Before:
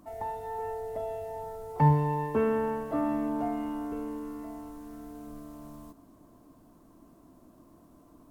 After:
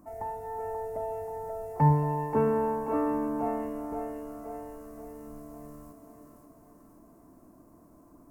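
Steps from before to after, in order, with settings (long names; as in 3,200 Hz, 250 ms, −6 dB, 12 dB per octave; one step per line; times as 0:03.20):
parametric band 3,400 Hz −14.5 dB 0.9 octaves
on a send: feedback echo with a high-pass in the loop 532 ms, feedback 55%, high-pass 350 Hz, level −5 dB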